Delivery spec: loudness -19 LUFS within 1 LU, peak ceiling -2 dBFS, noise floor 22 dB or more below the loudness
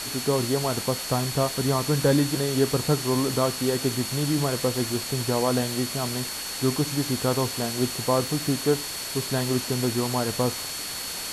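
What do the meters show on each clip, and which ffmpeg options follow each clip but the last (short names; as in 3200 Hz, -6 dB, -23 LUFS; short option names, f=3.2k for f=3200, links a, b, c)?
steady tone 4400 Hz; tone level -36 dBFS; noise floor -33 dBFS; noise floor target -47 dBFS; loudness -25.0 LUFS; peak -9.0 dBFS; loudness target -19.0 LUFS
-> -af "bandreject=f=4.4k:w=30"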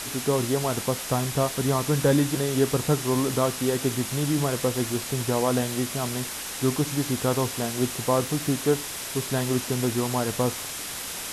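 steady tone none; noise floor -34 dBFS; noise floor target -48 dBFS
-> -af "afftdn=nr=14:nf=-34"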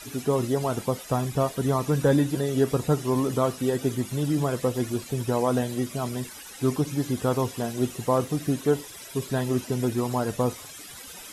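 noise floor -43 dBFS; noise floor target -49 dBFS
-> -af "afftdn=nr=6:nf=-43"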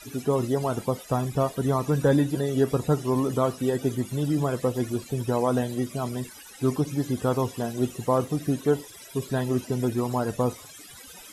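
noise floor -46 dBFS; noise floor target -49 dBFS
-> -af "afftdn=nr=6:nf=-46"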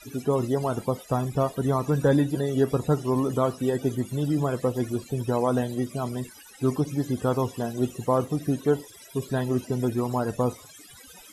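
noise floor -49 dBFS; loudness -26.5 LUFS; peak -10.0 dBFS; loudness target -19.0 LUFS
-> -af "volume=7.5dB"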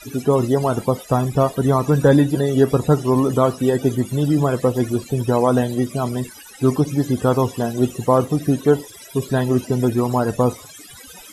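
loudness -19.0 LUFS; peak -2.5 dBFS; noise floor -41 dBFS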